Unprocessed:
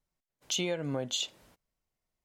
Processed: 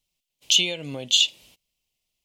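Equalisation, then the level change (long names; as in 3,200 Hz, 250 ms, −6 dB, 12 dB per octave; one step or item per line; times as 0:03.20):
high shelf with overshoot 2,100 Hz +10 dB, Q 3
0.0 dB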